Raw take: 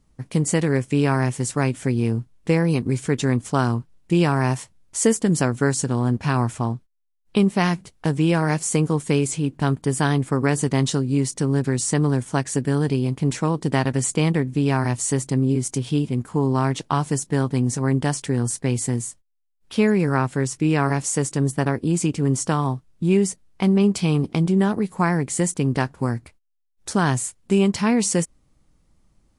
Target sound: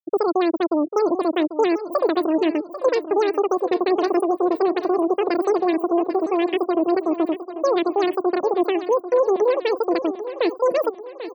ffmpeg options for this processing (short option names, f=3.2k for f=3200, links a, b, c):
-filter_complex "[0:a]bandreject=f=7.9k:w=30,afftfilt=real='re*gte(hypot(re,im),0.141)':imag='im*gte(hypot(re,im),0.141)':win_size=1024:overlap=0.75,bass=f=250:g=11,treble=f=4k:g=-3,asetrate=114219,aresample=44100,asplit=2[a][b];[b]aecho=0:1:792|1584|2376|3168|3960:0.251|0.123|0.0603|0.0296|0.0145[c];[a][c]amix=inputs=2:normalize=0,volume=-6.5dB"